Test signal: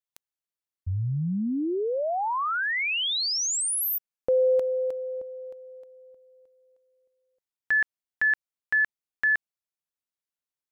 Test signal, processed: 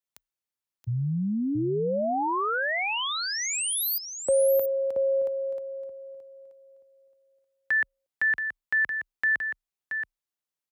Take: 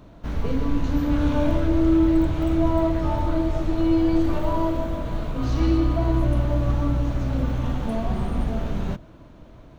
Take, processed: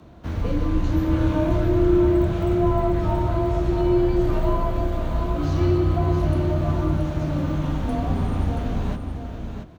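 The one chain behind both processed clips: frequency shift +28 Hz; dynamic bell 4.6 kHz, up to -5 dB, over -41 dBFS, Q 0.78; delay 677 ms -7 dB

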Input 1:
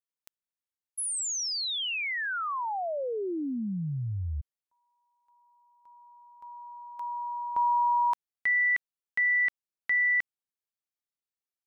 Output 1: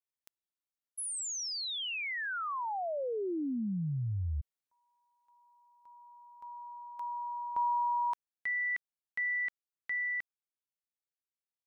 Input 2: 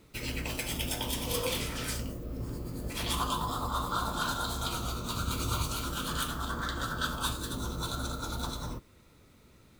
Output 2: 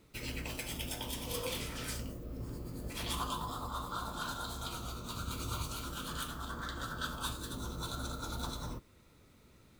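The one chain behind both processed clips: gain riding 2 s; trim -6.5 dB

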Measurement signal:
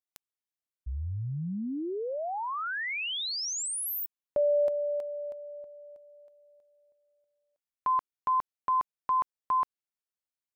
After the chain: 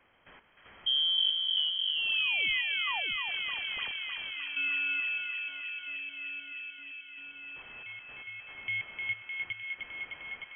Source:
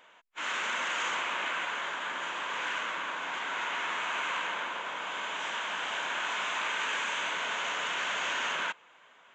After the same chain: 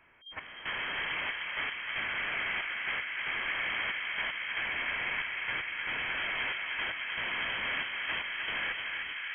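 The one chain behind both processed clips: one-bit delta coder 32 kbps, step -49.5 dBFS; peaking EQ 340 Hz -13 dB 1.1 oct; in parallel at +3 dB: peak limiter -35.5 dBFS; on the sum: trance gate "..x..xxxxx" 115 bpm -12 dB; distance through air 160 m; on a send: bucket-brigade echo 305 ms, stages 4096, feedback 83%, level -4 dB; on the sum: frequency inversion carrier 3.2 kHz

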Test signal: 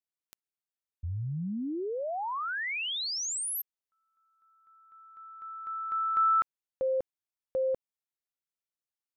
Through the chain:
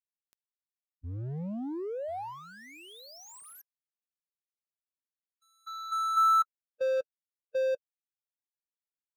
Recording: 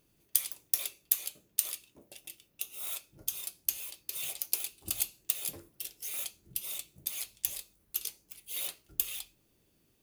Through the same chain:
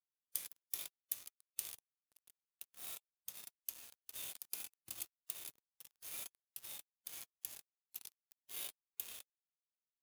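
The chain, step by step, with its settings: high-pass 66 Hz 12 dB/octave; delay 1048 ms -24 dB; crossover distortion -39.5 dBFS; harmonic-percussive split percussive -16 dB; trim +3 dB

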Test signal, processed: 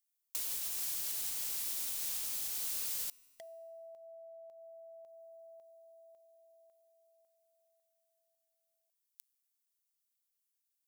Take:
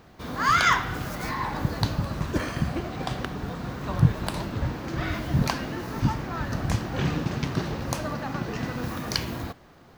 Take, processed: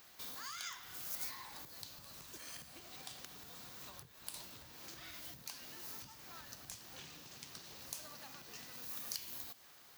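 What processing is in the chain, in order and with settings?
compression 6:1, threshold -36 dBFS; dynamic bell 1.6 kHz, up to -5 dB, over -53 dBFS, Q 0.91; overload inside the chain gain 31.5 dB; pre-emphasis filter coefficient 0.97; feedback comb 130 Hz, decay 1.8 s, mix 40%; trim +10 dB

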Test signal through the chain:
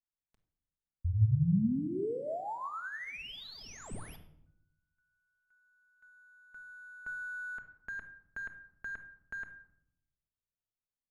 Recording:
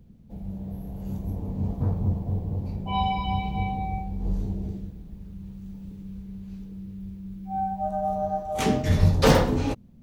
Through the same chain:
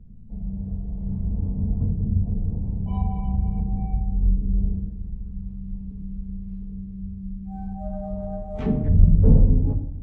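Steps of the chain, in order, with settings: in parallel at -9 dB: sample-rate reducer 8.3 kHz, jitter 0%; on the sum: RIAA curve playback; low-pass that closes with the level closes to 400 Hz, closed at -5.5 dBFS; simulated room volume 1900 m³, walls furnished, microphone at 1.5 m; trim -12 dB

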